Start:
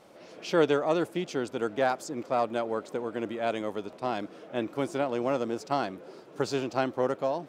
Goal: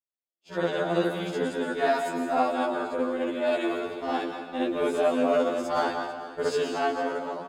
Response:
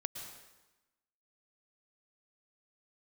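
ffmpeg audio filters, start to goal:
-filter_complex "[0:a]bandreject=frequency=5400:width=6.3,agate=range=-52dB:threshold=-37dB:ratio=16:detection=peak,dynaudnorm=framelen=110:gausssize=13:maxgain=10dB,aecho=1:1:446:0.158,asetrate=46722,aresample=44100,atempo=0.943874,asplit=2[link_01][link_02];[1:a]atrim=start_sample=2205,adelay=59[link_03];[link_02][link_03]afir=irnorm=-1:irlink=0,volume=5dB[link_04];[link_01][link_04]amix=inputs=2:normalize=0,afftfilt=real='re*2*eq(mod(b,4),0)':imag='im*2*eq(mod(b,4),0)':win_size=2048:overlap=0.75,volume=-9dB"

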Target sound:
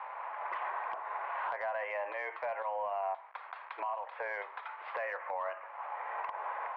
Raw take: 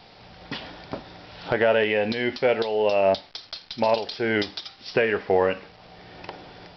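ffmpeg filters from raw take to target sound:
ffmpeg -i in.wav -af "equalizer=frequency=980:width=2.6:gain=12,acompressor=threshold=-32dB:ratio=8,highpass=frequency=500:width_type=q:width=0.5412,highpass=frequency=500:width_type=q:width=1.307,lowpass=frequency=2100:width_type=q:width=0.5176,lowpass=frequency=2100:width_type=q:width=0.7071,lowpass=frequency=2100:width_type=q:width=1.932,afreqshift=92,asoftclip=type=tanh:threshold=-23.5dB,alimiter=level_in=9dB:limit=-24dB:level=0:latency=1:release=62,volume=-9dB,volume=5dB" out.wav

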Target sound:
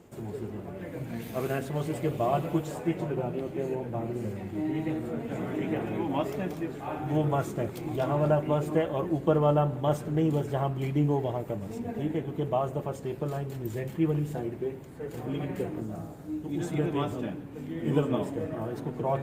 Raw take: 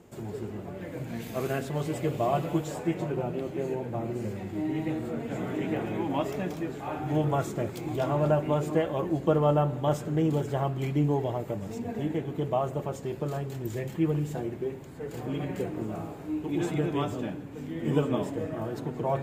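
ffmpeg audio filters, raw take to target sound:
ffmpeg -i in.wav -filter_complex "[0:a]asplit=3[link_01][link_02][link_03];[link_01]afade=type=out:start_time=15.79:duration=0.02[link_04];[link_02]equalizer=frequency=400:width_type=o:width=0.67:gain=-6,equalizer=frequency=1000:width_type=o:width=0.67:gain=-7,equalizer=frequency=2500:width_type=o:width=0.67:gain=-8,equalizer=frequency=6300:width_type=o:width=0.67:gain=4,afade=type=in:start_time=15.79:duration=0.02,afade=type=out:start_time=16.72:duration=0.02[link_05];[link_03]afade=type=in:start_time=16.72:duration=0.02[link_06];[link_04][link_05][link_06]amix=inputs=3:normalize=0" -ar 48000 -c:a libopus -b:a 48k out.opus

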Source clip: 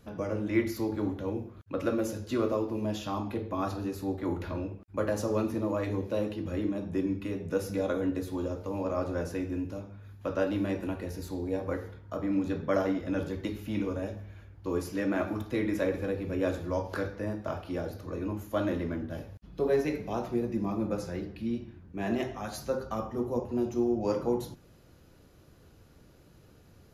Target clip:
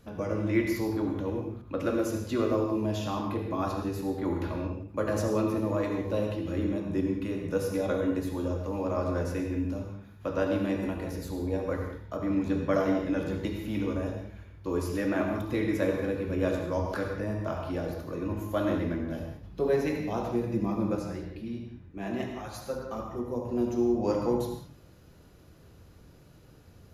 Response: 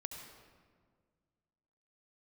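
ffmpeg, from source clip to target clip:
-filter_complex "[0:a]asplit=3[link_01][link_02][link_03];[link_01]afade=type=out:start_time=20.98:duration=0.02[link_04];[link_02]flanger=delay=2.1:depth=5.3:regen=-45:speed=1.6:shape=sinusoidal,afade=type=in:start_time=20.98:duration=0.02,afade=type=out:start_time=23.44:duration=0.02[link_05];[link_03]afade=type=in:start_time=23.44:duration=0.02[link_06];[link_04][link_05][link_06]amix=inputs=3:normalize=0[link_07];[1:a]atrim=start_sample=2205,afade=type=out:start_time=0.25:duration=0.01,atrim=end_sample=11466[link_08];[link_07][link_08]afir=irnorm=-1:irlink=0,volume=4.5dB"

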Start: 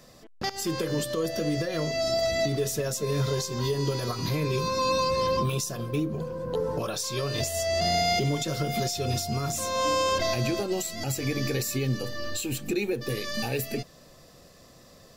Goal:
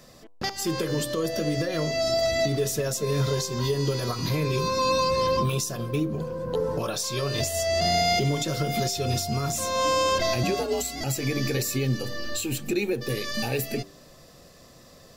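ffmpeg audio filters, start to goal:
ffmpeg -i in.wav -filter_complex "[0:a]bandreject=frequency=97.86:width_type=h:width=4,bandreject=frequency=195.72:width_type=h:width=4,bandreject=frequency=293.58:width_type=h:width=4,bandreject=frequency=391.44:width_type=h:width=4,bandreject=frequency=489.3:width_type=h:width=4,bandreject=frequency=587.16:width_type=h:width=4,bandreject=frequency=685.02:width_type=h:width=4,bandreject=frequency=782.88:width_type=h:width=4,bandreject=frequency=880.74:width_type=h:width=4,bandreject=frequency=978.6:width_type=h:width=4,bandreject=frequency=1076.46:width_type=h:width=4,bandreject=frequency=1174.32:width_type=h:width=4,asettb=1/sr,asplit=3[link_01][link_02][link_03];[link_01]atrim=end=10.434[link_04];[link_02]atrim=start=10.43:end=11.01,asetpts=PTS-STARTPTS,afade=type=in:duration=0.004:curve=qsin,afade=type=out:start_time=0.576:duration=0.004:curve=qsin,afreqshift=58[link_05];[link_03]atrim=start=11.006[link_06];[link_04][link_05]acrossfade=duration=0.004:curve1=hsin:curve2=qsin[link_07];[link_07][link_06]acrossfade=duration=0.004:curve1=qsin:curve2=hsin,volume=2dB" out.wav

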